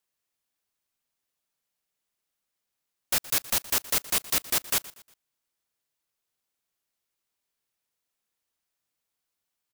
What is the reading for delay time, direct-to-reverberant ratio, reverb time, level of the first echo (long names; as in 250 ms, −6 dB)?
119 ms, no reverb audible, no reverb audible, −19.0 dB